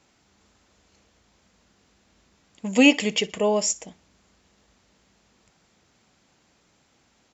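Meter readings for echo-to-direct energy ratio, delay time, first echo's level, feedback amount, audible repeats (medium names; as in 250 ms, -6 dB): -21.5 dB, 61 ms, -22.0 dB, 34%, 2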